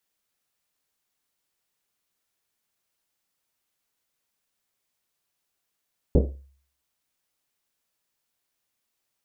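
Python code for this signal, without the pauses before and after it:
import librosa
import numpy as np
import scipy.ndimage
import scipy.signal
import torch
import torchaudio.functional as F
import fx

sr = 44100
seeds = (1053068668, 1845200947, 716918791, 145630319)

y = fx.risset_drum(sr, seeds[0], length_s=1.1, hz=68.0, decay_s=0.53, noise_hz=330.0, noise_width_hz=450.0, noise_pct=45)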